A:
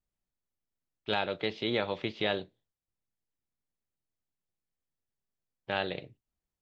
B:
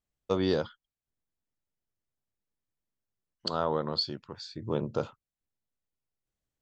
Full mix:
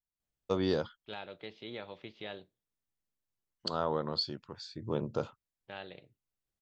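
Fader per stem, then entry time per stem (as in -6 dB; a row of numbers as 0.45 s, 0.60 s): -13.0 dB, -3.0 dB; 0.00 s, 0.20 s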